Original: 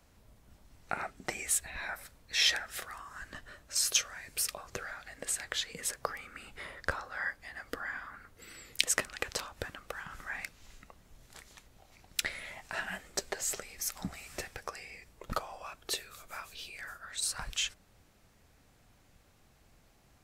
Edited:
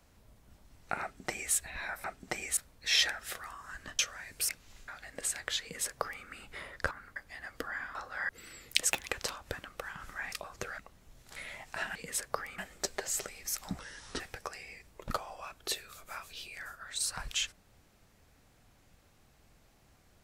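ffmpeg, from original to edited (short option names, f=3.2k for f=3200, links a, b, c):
-filter_complex "[0:a]asplit=19[a][b][c][d][e][f][g][h][i][j][k][l][m][n][o][p][q][r][s];[a]atrim=end=2.042[t];[b]atrim=start=1.008:end=1.542[u];[c]atrim=start=2.038:end=3.462[v];[d]atrim=start=3.958:end=4.462[w];[e]atrim=start=10.428:end=10.822[x];[f]atrim=start=4.918:end=6.952[y];[g]atrim=start=8.078:end=8.332[z];[h]atrim=start=7.288:end=8.082[aa];[i]atrim=start=6.948:end=7.292[ab];[j]atrim=start=8.328:end=8.954[ac];[k]atrim=start=8.95:end=9.2,asetpts=PTS-STARTPTS,asetrate=60417,aresample=44100,atrim=end_sample=8047,asetpts=PTS-STARTPTS[ad];[l]atrim=start=9.196:end=10.432[ae];[m]atrim=start=4.458:end=4.922[af];[n]atrim=start=10.818:end=11.402[ag];[o]atrim=start=12.328:end=12.922[ah];[p]atrim=start=5.658:end=6.292[ai];[q]atrim=start=12.918:end=14.134[aj];[r]atrim=start=14.13:end=14.42,asetpts=PTS-STARTPTS,asetrate=31311,aresample=44100[ak];[s]atrim=start=14.416[al];[t][u]acrossfade=d=0.004:c1=hsin:c2=hsin[am];[am][v]acrossfade=d=0.004:c1=hsin:c2=hsin[an];[an][w]acrossfade=d=0.004:c1=hsin:c2=hsin[ao];[ao][x]acrossfade=d=0.004:c1=hsin:c2=hsin[ap];[ap][y]acrossfade=d=0.004:c1=hsin:c2=hsin[aq];[aq][z]acrossfade=d=0.004:c1=hsin:c2=hsin[ar];[ar][aa]acrossfade=d=0.004:c1=hsin:c2=hsin[as];[as][ab]acrossfade=d=0.004:c1=hsin:c2=hsin[at];[at][ac]acrossfade=d=0.004:c1=hsin:c2=hsin[au];[au][ad]acrossfade=d=0.004:c1=hsin:c2=hsin[av];[av][ae]acrossfade=d=0.004:c1=hsin:c2=hsin[aw];[aw][af]acrossfade=d=0.004:c1=hsin:c2=hsin[ax];[ax][ag]acrossfade=d=0.004:c1=hsin:c2=hsin[ay];[ay][ah]acrossfade=d=0.004:c1=hsin:c2=hsin[az];[az][ai]acrossfade=d=0.004:c1=hsin:c2=hsin[ba];[ba][aj]acrossfade=d=0.004:c1=hsin:c2=hsin[bb];[bb][ak]acrossfade=d=0.004:c1=hsin:c2=hsin[bc];[bc][al]acrossfade=d=0.004:c1=hsin:c2=hsin"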